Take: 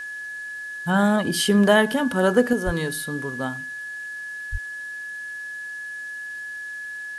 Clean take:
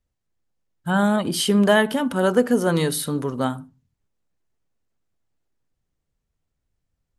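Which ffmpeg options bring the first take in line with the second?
-filter_complex "[0:a]bandreject=f=1.7k:w=30,asplit=3[a][b][c];[a]afade=t=out:st=2.65:d=0.02[d];[b]highpass=f=140:w=0.5412,highpass=f=140:w=1.3066,afade=t=in:st=2.65:d=0.02,afade=t=out:st=2.77:d=0.02[e];[c]afade=t=in:st=2.77:d=0.02[f];[d][e][f]amix=inputs=3:normalize=0,asplit=3[g][h][i];[g]afade=t=out:st=4.51:d=0.02[j];[h]highpass=f=140:w=0.5412,highpass=f=140:w=1.3066,afade=t=in:st=4.51:d=0.02,afade=t=out:st=4.63:d=0.02[k];[i]afade=t=in:st=4.63:d=0.02[l];[j][k][l]amix=inputs=3:normalize=0,agate=range=-21dB:threshold=-26dB,asetnsamples=n=441:p=0,asendcmd='2.53 volume volume 5.5dB',volume=0dB"

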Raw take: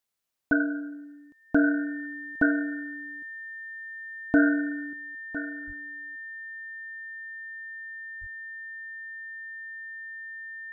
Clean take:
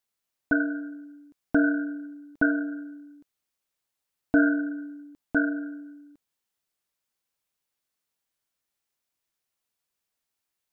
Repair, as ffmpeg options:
-filter_complex "[0:a]bandreject=f=1.8k:w=30,asplit=3[a][b][c];[a]afade=t=out:st=5.66:d=0.02[d];[b]highpass=f=140:w=0.5412,highpass=f=140:w=1.3066,afade=t=in:st=5.66:d=0.02,afade=t=out:st=5.78:d=0.02[e];[c]afade=t=in:st=5.78:d=0.02[f];[d][e][f]amix=inputs=3:normalize=0,asplit=3[g][h][i];[g]afade=t=out:st=8.2:d=0.02[j];[h]highpass=f=140:w=0.5412,highpass=f=140:w=1.3066,afade=t=in:st=8.2:d=0.02,afade=t=out:st=8.32:d=0.02[k];[i]afade=t=in:st=8.32:d=0.02[l];[j][k][l]amix=inputs=3:normalize=0,asetnsamples=n=441:p=0,asendcmd='4.93 volume volume 10dB',volume=0dB"

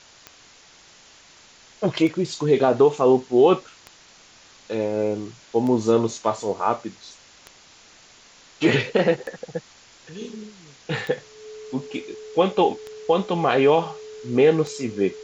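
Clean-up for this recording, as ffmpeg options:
-af "adeclick=t=4,bandreject=f=430:w=30,afwtdn=0.005"

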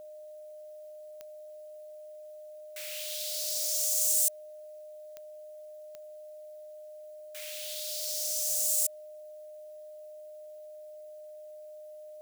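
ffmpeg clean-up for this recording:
-af "adeclick=t=4,bandreject=f=610:w=30,agate=range=-21dB:threshold=-39dB"

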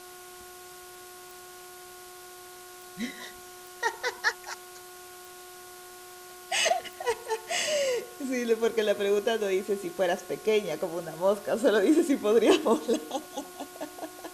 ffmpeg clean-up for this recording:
-af "adeclick=t=4,bandreject=f=361.8:t=h:w=4,bandreject=f=723.6:t=h:w=4,bandreject=f=1.0854k:t=h:w=4,bandreject=f=1.4472k:t=h:w=4,afwtdn=0.004"

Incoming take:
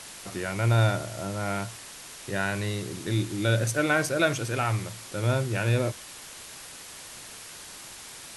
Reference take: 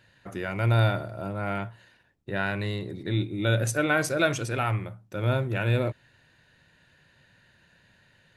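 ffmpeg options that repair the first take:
-af "afwtdn=0.0089"

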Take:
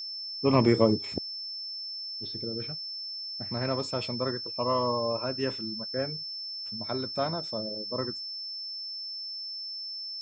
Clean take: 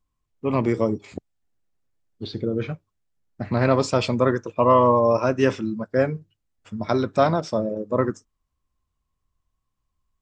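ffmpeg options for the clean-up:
-af "bandreject=f=5.3k:w=30,asetnsamples=n=441:p=0,asendcmd='1.51 volume volume 11.5dB',volume=0dB"

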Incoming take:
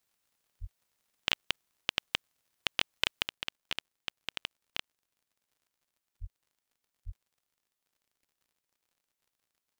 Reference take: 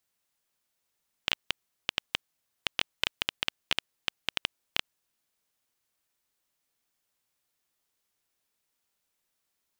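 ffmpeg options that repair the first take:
-filter_complex "[0:a]adeclick=t=4,asplit=3[a][b][c];[a]afade=t=out:st=0.6:d=0.02[d];[b]highpass=f=140:w=0.5412,highpass=f=140:w=1.3066,afade=t=in:st=0.6:d=0.02,afade=t=out:st=0.72:d=0.02[e];[c]afade=t=in:st=0.72:d=0.02[f];[d][e][f]amix=inputs=3:normalize=0,asplit=3[g][h][i];[g]afade=t=out:st=6.2:d=0.02[j];[h]highpass=f=140:w=0.5412,highpass=f=140:w=1.3066,afade=t=in:st=6.2:d=0.02,afade=t=out:st=6.32:d=0.02[k];[i]afade=t=in:st=6.32:d=0.02[l];[j][k][l]amix=inputs=3:normalize=0,asplit=3[m][n][o];[m]afade=t=out:st=7.05:d=0.02[p];[n]highpass=f=140:w=0.5412,highpass=f=140:w=1.3066,afade=t=in:st=7.05:d=0.02,afade=t=out:st=7.17:d=0.02[q];[o]afade=t=in:st=7.17:d=0.02[r];[p][q][r]amix=inputs=3:normalize=0,asetnsamples=n=441:p=0,asendcmd='3.28 volume volume 7dB',volume=0dB"

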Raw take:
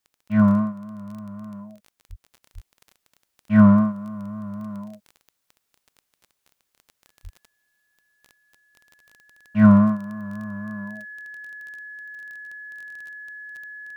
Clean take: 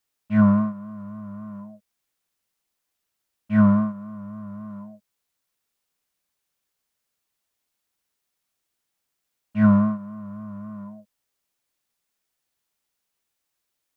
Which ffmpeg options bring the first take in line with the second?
-filter_complex "[0:a]adeclick=t=4,bandreject=f=1.7k:w=30,asplit=3[a][b][c];[a]afade=t=out:st=2.09:d=0.02[d];[b]highpass=f=140:w=0.5412,highpass=f=140:w=1.3066,afade=t=in:st=2.09:d=0.02,afade=t=out:st=2.21:d=0.02[e];[c]afade=t=in:st=2.21:d=0.02[f];[d][e][f]amix=inputs=3:normalize=0,asplit=3[g][h][i];[g]afade=t=out:st=2.54:d=0.02[j];[h]highpass=f=140:w=0.5412,highpass=f=140:w=1.3066,afade=t=in:st=2.54:d=0.02,afade=t=out:st=2.66:d=0.02[k];[i]afade=t=in:st=2.66:d=0.02[l];[j][k][l]amix=inputs=3:normalize=0,asplit=3[m][n][o];[m]afade=t=out:st=7.23:d=0.02[p];[n]highpass=f=140:w=0.5412,highpass=f=140:w=1.3066,afade=t=in:st=7.23:d=0.02,afade=t=out:st=7.35:d=0.02[q];[o]afade=t=in:st=7.35:d=0.02[r];[p][q][r]amix=inputs=3:normalize=0,asetnsamples=n=441:p=0,asendcmd='2.43 volume volume -3.5dB',volume=0dB"

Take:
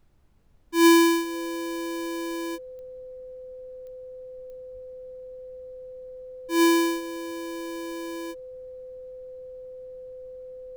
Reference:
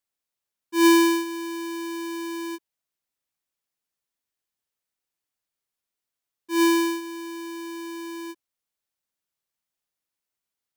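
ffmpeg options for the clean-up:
-filter_complex "[0:a]adeclick=t=4,bandreject=f=510:w=30,asplit=3[a][b][c];[a]afade=t=out:st=4.73:d=0.02[d];[b]highpass=f=140:w=0.5412,highpass=f=140:w=1.3066,afade=t=in:st=4.73:d=0.02,afade=t=out:st=4.85:d=0.02[e];[c]afade=t=in:st=4.85:d=0.02[f];[d][e][f]amix=inputs=3:normalize=0,agate=range=-21dB:threshold=-33dB"

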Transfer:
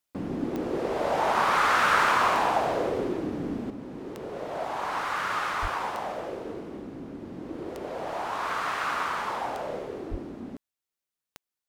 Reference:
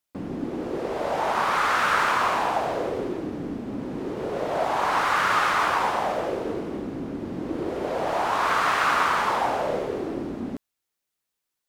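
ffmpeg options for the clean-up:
-filter_complex "[0:a]adeclick=t=4,asplit=3[a][b][c];[a]afade=t=out:st=5.61:d=0.02[d];[b]highpass=f=140:w=0.5412,highpass=f=140:w=1.3066,afade=t=in:st=5.61:d=0.02,afade=t=out:st=5.73:d=0.02[e];[c]afade=t=in:st=5.73:d=0.02[f];[d][e][f]amix=inputs=3:normalize=0,asplit=3[g][h][i];[g]afade=t=out:st=10.1:d=0.02[j];[h]highpass=f=140:w=0.5412,highpass=f=140:w=1.3066,afade=t=in:st=10.1:d=0.02,afade=t=out:st=10.22:d=0.02[k];[i]afade=t=in:st=10.22:d=0.02[l];[j][k][l]amix=inputs=3:normalize=0,asetnsamples=n=441:p=0,asendcmd='3.7 volume volume 7.5dB',volume=0dB"

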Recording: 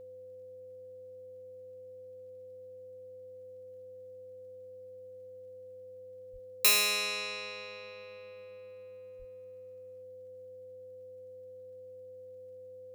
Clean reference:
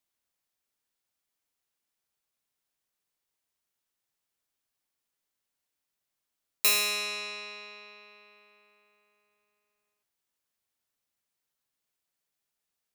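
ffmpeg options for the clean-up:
-filter_complex "[0:a]adeclick=t=4,bandreject=f=100.1:t=h:w=4,bandreject=f=200.2:t=h:w=4,bandreject=f=300.3:t=h:w=4,bandreject=f=400.4:t=h:w=4,bandreject=f=500.5:t=h:w=4,bandreject=f=600.6:t=h:w=4,bandreject=f=510:w=30,asplit=3[a][b][c];[a]afade=t=out:st=6.32:d=0.02[d];[b]highpass=f=140:w=0.5412,highpass=f=140:w=1.3066,afade=t=in:st=6.32:d=0.02,afade=t=out:st=6.44:d=0.02[e];[c]afade=t=in:st=6.44:d=0.02[f];[d][e][f]amix=inputs=3:normalize=0,asplit=3[g][h][i];[g]afade=t=out:st=9.18:d=0.02[j];[h]highpass=f=140:w=0.5412,highpass=f=140:w=1.3066,afade=t=in:st=9.18:d=0.02,afade=t=out:st=9.3:d=0.02[k];[i]afade=t=in:st=9.3:d=0.02[l];[j][k][l]amix=inputs=3:normalize=0"

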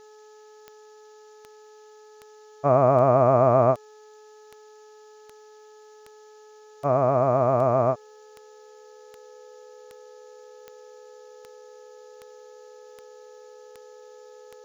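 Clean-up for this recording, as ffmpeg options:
-af "adeclick=t=4,bandreject=f=427.2:t=h:w=4,bandreject=f=854.4:t=h:w=4,bandreject=f=1.2816k:t=h:w=4,bandreject=f=1.7088k:t=h:w=4,bandreject=f=500:w=30,afftdn=nr=19:nf=-50"

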